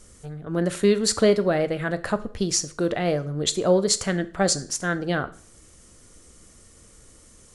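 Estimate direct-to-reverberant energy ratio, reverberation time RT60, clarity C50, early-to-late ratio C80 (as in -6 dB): 11.5 dB, 0.45 s, 17.0 dB, 21.0 dB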